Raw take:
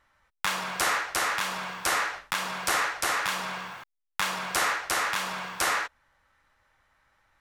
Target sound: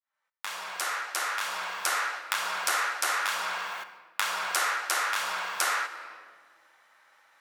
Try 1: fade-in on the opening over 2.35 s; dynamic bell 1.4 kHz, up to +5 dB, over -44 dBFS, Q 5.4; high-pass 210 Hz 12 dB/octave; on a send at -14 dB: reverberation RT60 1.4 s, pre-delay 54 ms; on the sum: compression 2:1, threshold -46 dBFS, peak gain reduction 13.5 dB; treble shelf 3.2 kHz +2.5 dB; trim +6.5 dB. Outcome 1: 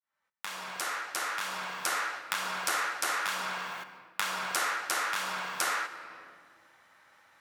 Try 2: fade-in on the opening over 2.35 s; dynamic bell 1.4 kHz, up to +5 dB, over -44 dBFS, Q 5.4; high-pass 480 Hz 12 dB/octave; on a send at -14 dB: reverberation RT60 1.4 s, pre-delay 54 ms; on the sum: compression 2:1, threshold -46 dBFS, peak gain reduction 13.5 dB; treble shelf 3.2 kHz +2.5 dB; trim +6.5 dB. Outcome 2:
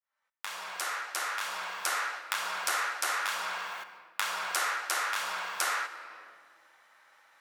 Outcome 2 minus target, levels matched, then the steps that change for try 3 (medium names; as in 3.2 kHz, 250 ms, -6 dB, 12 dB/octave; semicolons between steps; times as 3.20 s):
compression: peak gain reduction +3 dB
change: compression 2:1, threshold -40 dBFS, peak gain reduction 10.5 dB